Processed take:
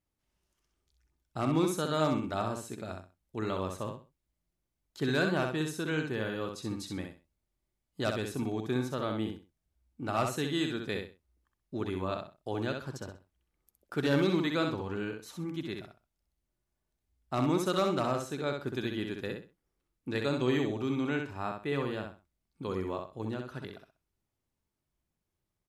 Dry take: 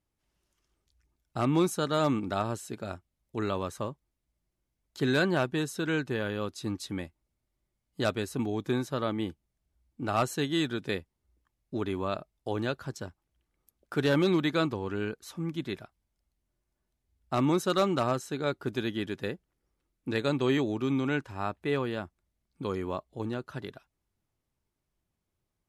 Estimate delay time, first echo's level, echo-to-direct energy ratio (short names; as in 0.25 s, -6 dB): 64 ms, -5.0 dB, -4.5 dB